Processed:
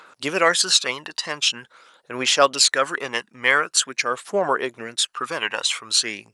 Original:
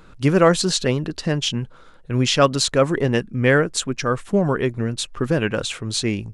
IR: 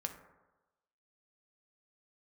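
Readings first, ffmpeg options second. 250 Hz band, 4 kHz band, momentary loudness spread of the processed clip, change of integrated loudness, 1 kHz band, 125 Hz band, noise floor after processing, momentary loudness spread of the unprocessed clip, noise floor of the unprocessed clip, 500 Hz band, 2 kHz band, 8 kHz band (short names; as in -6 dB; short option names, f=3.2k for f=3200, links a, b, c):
-13.5 dB, +4.5 dB, 10 LU, 0.0 dB, +2.0 dB, -22.0 dB, -61 dBFS, 9 LU, -45 dBFS, -5.0 dB, +3.5 dB, +5.0 dB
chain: -af "highpass=840,aphaser=in_gain=1:out_gain=1:delay=1.1:decay=0.5:speed=0.45:type=triangular,volume=4dB"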